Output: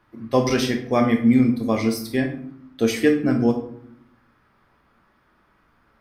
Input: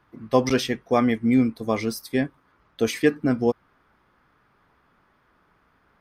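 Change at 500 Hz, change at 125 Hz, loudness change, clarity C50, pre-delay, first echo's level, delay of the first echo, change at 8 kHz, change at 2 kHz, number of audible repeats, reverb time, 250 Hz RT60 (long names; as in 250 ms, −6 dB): +1.5 dB, +4.0 dB, +2.5 dB, 8.5 dB, 3 ms, no echo audible, no echo audible, +2.0 dB, +1.5 dB, no echo audible, 0.65 s, 1.1 s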